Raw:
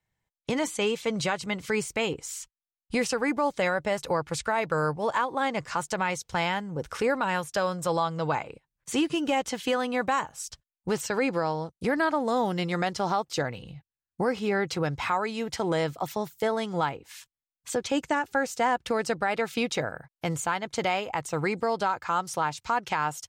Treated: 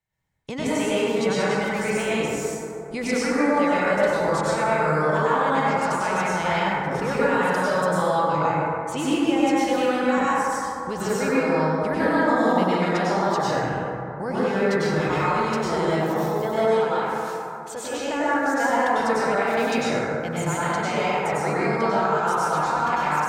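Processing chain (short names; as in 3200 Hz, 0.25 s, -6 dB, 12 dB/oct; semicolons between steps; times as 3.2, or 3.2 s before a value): 16.6–18.09 bell 160 Hz -10.5 dB 2 oct; plate-style reverb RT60 2.9 s, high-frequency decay 0.3×, pre-delay 85 ms, DRR -9.5 dB; gain -4.5 dB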